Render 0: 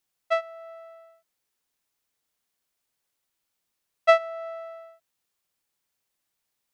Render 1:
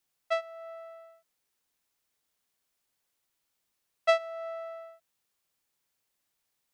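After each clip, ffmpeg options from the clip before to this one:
ffmpeg -i in.wav -filter_complex "[0:a]acrossover=split=470|3000[link_01][link_02][link_03];[link_02]acompressor=threshold=-40dB:ratio=1.5[link_04];[link_01][link_04][link_03]amix=inputs=3:normalize=0" out.wav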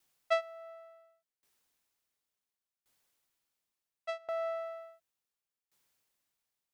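ffmpeg -i in.wav -af "aeval=exprs='val(0)*pow(10,-23*if(lt(mod(0.7*n/s,1),2*abs(0.7)/1000),1-mod(0.7*n/s,1)/(2*abs(0.7)/1000),(mod(0.7*n/s,1)-2*abs(0.7)/1000)/(1-2*abs(0.7)/1000))/20)':channel_layout=same,volume=5.5dB" out.wav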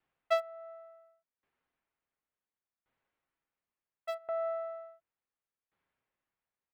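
ffmpeg -i in.wav -filter_complex "[0:a]acrossover=split=720|2600[link_01][link_02][link_03];[link_02]aecho=1:1:7.4:0.51[link_04];[link_03]aeval=exprs='val(0)*gte(abs(val(0)),0.00316)':channel_layout=same[link_05];[link_01][link_04][link_05]amix=inputs=3:normalize=0" out.wav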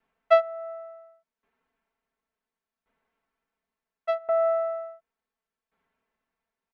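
ffmpeg -i in.wav -af "aemphasis=mode=reproduction:type=75fm,bandreject=frequency=50:width_type=h:width=6,bandreject=frequency=100:width_type=h:width=6,bandreject=frequency=150:width_type=h:width=6,bandreject=frequency=200:width_type=h:width=6,aecho=1:1:4.5:0.96,volume=5dB" out.wav

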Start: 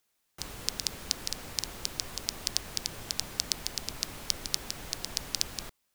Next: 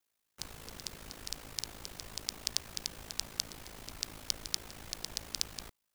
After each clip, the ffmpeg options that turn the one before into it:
ffmpeg -i in.wav -af "aeval=exprs='val(0)*sin(2*PI*27*n/s)':channel_layout=same,volume=-3dB" out.wav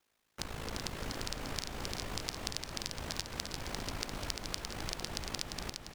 ffmpeg -i in.wav -filter_complex "[0:a]lowpass=frequency=3000:poles=1,acompressor=threshold=-45dB:ratio=6,asplit=2[link_01][link_02];[link_02]aecho=0:1:347|694|1041|1388|1735|2082|2429:0.562|0.298|0.158|0.0837|0.0444|0.0235|0.0125[link_03];[link_01][link_03]amix=inputs=2:normalize=0,volume=10.5dB" out.wav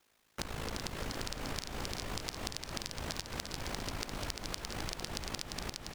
ffmpeg -i in.wav -af "acompressor=threshold=-41dB:ratio=5,volume=6dB" out.wav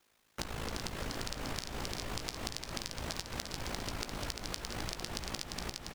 ffmpeg -i in.wav -filter_complex "[0:a]asplit=2[link_01][link_02];[link_02]adelay=17,volume=-12.5dB[link_03];[link_01][link_03]amix=inputs=2:normalize=0" out.wav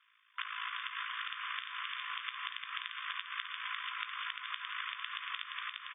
ffmpeg -i in.wav -af "afftfilt=real='re*between(b*sr/4096,1000,3600)':imag='im*between(b*sr/4096,1000,3600)':win_size=4096:overlap=0.75,volume=6.5dB" out.wav

